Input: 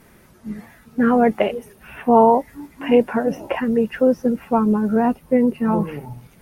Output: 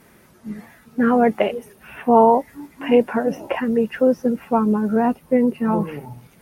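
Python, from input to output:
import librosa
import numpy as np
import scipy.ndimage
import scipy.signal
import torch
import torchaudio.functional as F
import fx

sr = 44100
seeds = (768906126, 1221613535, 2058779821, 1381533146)

y = fx.low_shelf(x, sr, hz=63.0, db=-12.0)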